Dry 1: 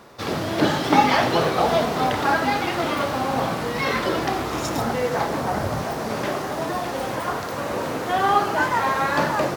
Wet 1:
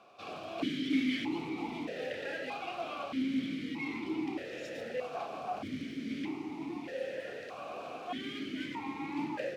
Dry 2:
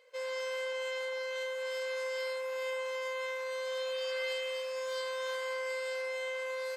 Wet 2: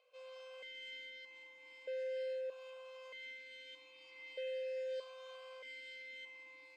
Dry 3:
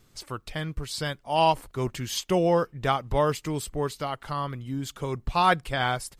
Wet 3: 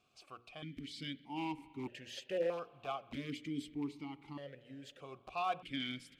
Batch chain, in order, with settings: companding laws mixed up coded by mu; peaking EQ 830 Hz -13.5 dB 2.1 oct; hum notches 60/120/180/240/300/360/420/480/540 Hz; in parallel at -4 dB: integer overflow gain 22 dB; on the sum: spring tank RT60 3.3 s, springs 42 ms, chirp 40 ms, DRR 17 dB; stepped vowel filter 1.6 Hz

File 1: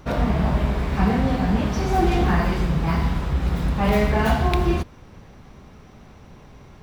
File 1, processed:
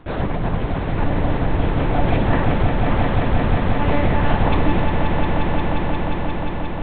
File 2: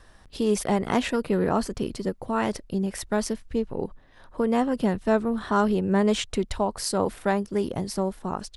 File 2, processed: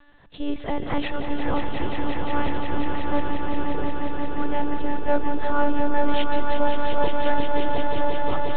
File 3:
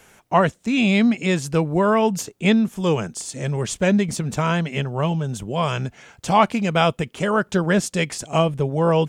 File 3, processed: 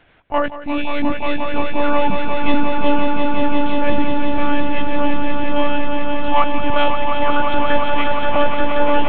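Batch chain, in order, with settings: monotone LPC vocoder at 8 kHz 290 Hz; echo with a slow build-up 177 ms, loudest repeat 5, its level -7 dB; trim -1 dB

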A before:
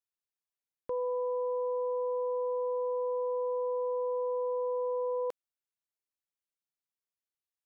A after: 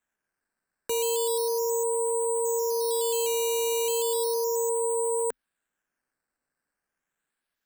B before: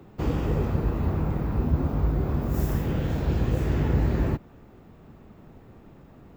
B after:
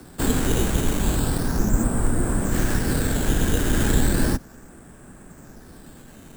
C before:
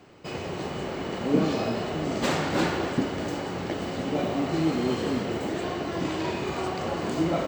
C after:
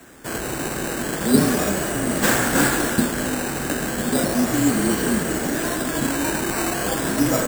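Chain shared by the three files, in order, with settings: decimation with a swept rate 9×, swing 100% 0.35 Hz; treble shelf 10 kHz +11.5 dB; frequency shift -36 Hz; graphic EQ with 31 bands 100 Hz -9 dB, 250 Hz +4 dB, 1.6 kHz +11 dB, 8 kHz +11 dB; trim +4.5 dB

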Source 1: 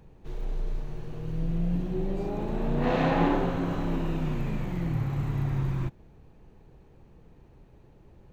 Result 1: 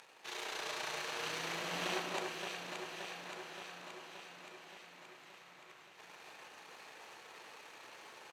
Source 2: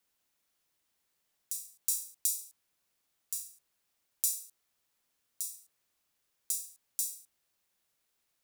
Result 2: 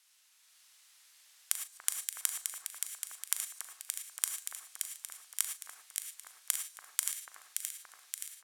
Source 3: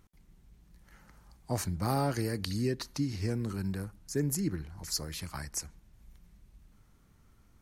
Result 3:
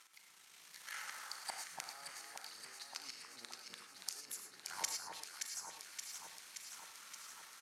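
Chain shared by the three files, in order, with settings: partial rectifier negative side -7 dB; low-pass 9.6 kHz 12 dB/octave; peaking EQ 7.2 kHz -2.5 dB 1.7 oct; in parallel at -6.5 dB: hard clipper -24.5 dBFS; on the sum: peak limiter -22 dBFS; high-pass 1.2 kHz 12 dB/octave; inverted gate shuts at -41 dBFS, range -29 dB; doubling 39 ms -13 dB; gated-style reverb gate 130 ms rising, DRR 6 dB; level rider gain up to 4.5 dB; treble shelf 2.8 kHz +9.5 dB; on a send: echo whose repeats swap between lows and highs 287 ms, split 1.6 kHz, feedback 82%, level -3.5 dB; on the sum: trim +8 dB

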